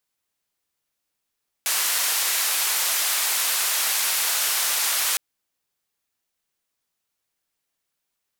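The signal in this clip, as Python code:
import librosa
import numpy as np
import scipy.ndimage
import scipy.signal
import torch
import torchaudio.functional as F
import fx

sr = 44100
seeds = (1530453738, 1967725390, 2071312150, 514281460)

y = fx.band_noise(sr, seeds[0], length_s=3.51, low_hz=810.0, high_hz=15000.0, level_db=-23.0)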